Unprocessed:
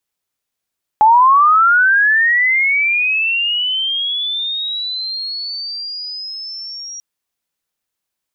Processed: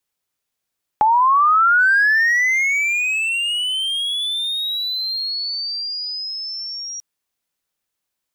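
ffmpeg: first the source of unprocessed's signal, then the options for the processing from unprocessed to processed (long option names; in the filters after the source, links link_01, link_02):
-f lavfi -i "aevalsrc='pow(10,(-5.5-21.5*t/5.99)/20)*sin(2*PI*(840*t+4860*t*t/(2*5.99)))':duration=5.99:sample_rate=44100"
-filter_complex "[0:a]acrossover=split=840|1900[link_01][link_02][link_03];[link_01]acompressor=threshold=-24dB:ratio=4[link_04];[link_02]acompressor=threshold=-18dB:ratio=4[link_05];[link_03]acompressor=threshold=-19dB:ratio=4[link_06];[link_04][link_05][link_06]amix=inputs=3:normalize=0,acrossover=split=1800[link_07][link_08];[link_08]volume=21.5dB,asoftclip=hard,volume=-21.5dB[link_09];[link_07][link_09]amix=inputs=2:normalize=0"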